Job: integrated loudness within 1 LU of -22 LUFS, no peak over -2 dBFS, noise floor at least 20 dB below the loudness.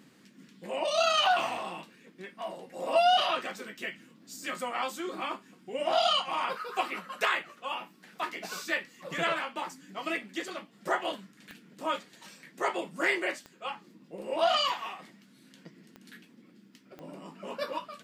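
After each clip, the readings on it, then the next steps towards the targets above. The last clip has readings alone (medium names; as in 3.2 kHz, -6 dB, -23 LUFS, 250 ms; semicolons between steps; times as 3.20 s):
clicks found 5; loudness -31.0 LUFS; peak level -14.5 dBFS; loudness target -22.0 LUFS
-> de-click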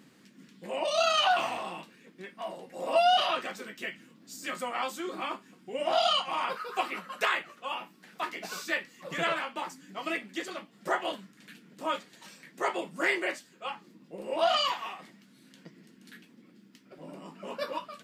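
clicks found 0; loudness -31.0 LUFS; peak level -14.5 dBFS; loudness target -22.0 LUFS
-> trim +9 dB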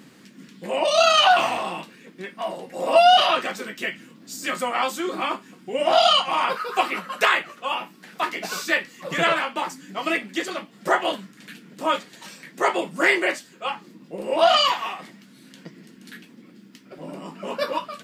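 loudness -22.0 LUFS; peak level -5.5 dBFS; noise floor -51 dBFS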